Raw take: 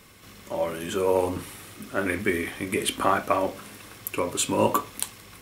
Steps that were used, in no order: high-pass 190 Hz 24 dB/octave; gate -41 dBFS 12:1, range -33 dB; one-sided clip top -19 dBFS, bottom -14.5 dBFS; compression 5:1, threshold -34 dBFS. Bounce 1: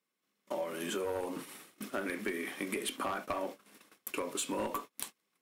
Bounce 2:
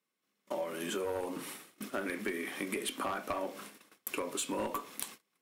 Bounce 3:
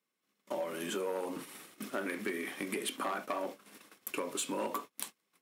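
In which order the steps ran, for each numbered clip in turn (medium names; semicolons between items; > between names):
high-pass > one-sided clip > compression > gate; high-pass > one-sided clip > gate > compression; one-sided clip > compression > gate > high-pass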